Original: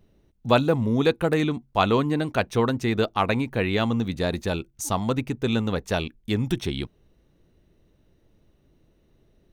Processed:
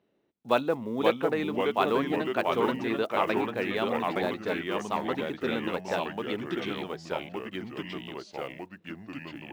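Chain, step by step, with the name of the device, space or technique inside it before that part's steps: echoes that change speed 0.466 s, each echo -2 st, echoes 3; early digital voice recorder (BPF 300–3400 Hz; block floating point 7-bit); gain -4.5 dB

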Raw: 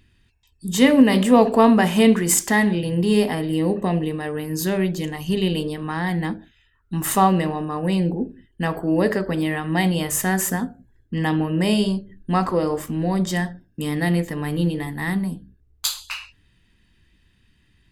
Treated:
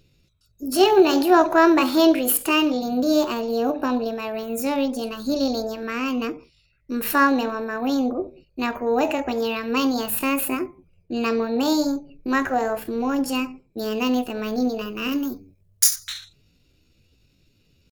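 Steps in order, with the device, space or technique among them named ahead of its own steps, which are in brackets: chipmunk voice (pitch shift +6.5 st); 15.12–15.96 high shelf 4900 Hz +12 dB; gain -1.5 dB

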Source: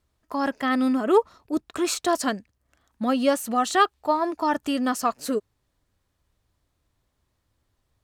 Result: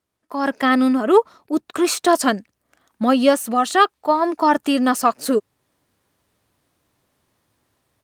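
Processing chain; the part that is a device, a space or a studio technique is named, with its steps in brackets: video call (HPF 160 Hz 12 dB/oct; AGC gain up to 12 dB; gain -1 dB; Opus 32 kbps 48000 Hz)

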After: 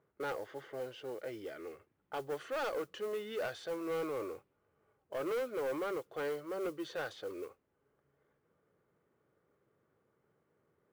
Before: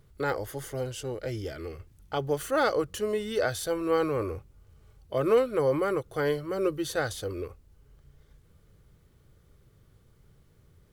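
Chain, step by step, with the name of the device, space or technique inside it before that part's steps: low-pass opened by the level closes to 1600 Hz, open at -25 dBFS; carbon microphone (BPF 320–3100 Hz; soft clip -27 dBFS, distortion -9 dB; modulation noise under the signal 23 dB); gain -5 dB

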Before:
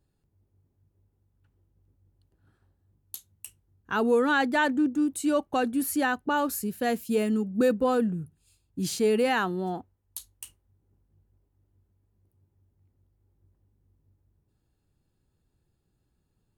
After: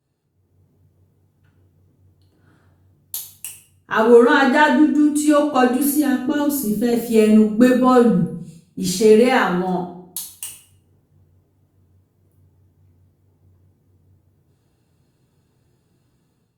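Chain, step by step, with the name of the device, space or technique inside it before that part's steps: 5.9–6.93 EQ curve 330 Hz 0 dB, 960 Hz -18 dB, 4900 Hz -5 dB; far-field microphone of a smart speaker (reverb RT60 0.60 s, pre-delay 3 ms, DRR -3 dB; HPF 110 Hz 12 dB/oct; AGC gain up to 9 dB; Opus 48 kbps 48000 Hz)

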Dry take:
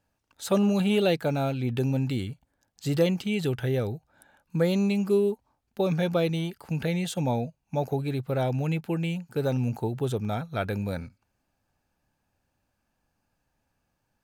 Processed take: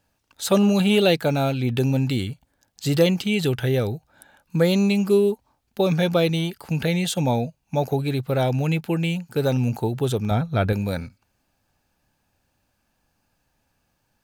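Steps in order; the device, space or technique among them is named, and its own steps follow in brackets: presence and air boost (bell 3800 Hz +3.5 dB 1.5 oct; high shelf 9100 Hz +5 dB); 10.31–10.73 tilt -2 dB/oct; gain +5 dB

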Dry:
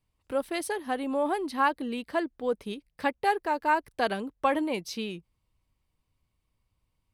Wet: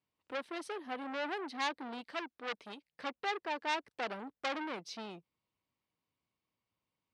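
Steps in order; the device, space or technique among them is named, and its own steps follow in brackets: public-address speaker with an overloaded transformer (core saturation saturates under 4000 Hz; BPF 200–5200 Hz); 2.01–2.92 tilt shelf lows -4 dB, about 1300 Hz; gain -5 dB

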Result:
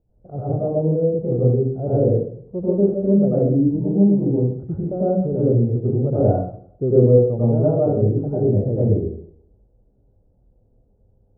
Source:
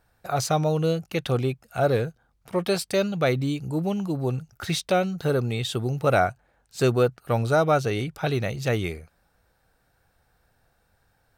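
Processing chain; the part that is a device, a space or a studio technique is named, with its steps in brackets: next room (LPF 480 Hz 24 dB/oct; reverb RT60 0.60 s, pre-delay 87 ms, DRR -9.5 dB)

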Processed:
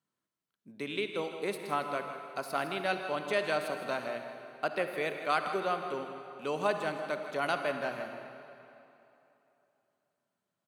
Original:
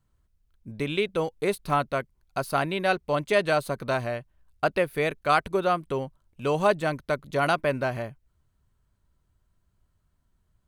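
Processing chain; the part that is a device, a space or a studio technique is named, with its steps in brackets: PA in a hall (HPF 180 Hz 24 dB/oct; bell 3400 Hz +3 dB 2.8 oct; echo 0.16 s -12 dB; reverb RT60 3.0 s, pre-delay 46 ms, DRR 6.5 dB); gain -9 dB

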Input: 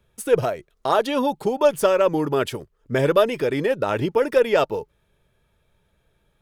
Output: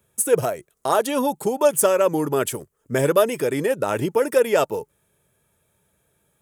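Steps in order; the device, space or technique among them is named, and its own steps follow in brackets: budget condenser microphone (HPF 93 Hz 12 dB/oct; resonant high shelf 6000 Hz +11 dB, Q 1.5)

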